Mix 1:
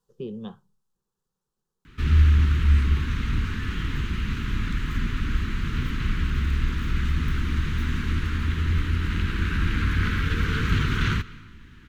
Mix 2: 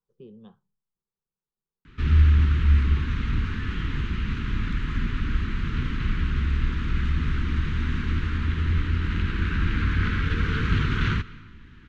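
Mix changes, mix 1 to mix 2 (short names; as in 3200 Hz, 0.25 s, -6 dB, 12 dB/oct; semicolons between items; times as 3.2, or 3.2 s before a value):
speech -11.5 dB; master: add air absorption 110 m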